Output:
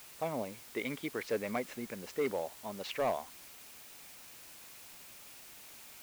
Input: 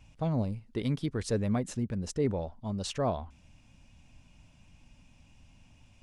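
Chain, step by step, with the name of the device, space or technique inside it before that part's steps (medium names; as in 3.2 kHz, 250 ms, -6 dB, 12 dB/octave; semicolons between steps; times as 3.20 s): drive-through speaker (band-pass 420–2900 Hz; peaking EQ 2.2 kHz +10 dB 0.41 oct; hard clipper -27 dBFS, distortion -17 dB; white noise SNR 13 dB); trim +1 dB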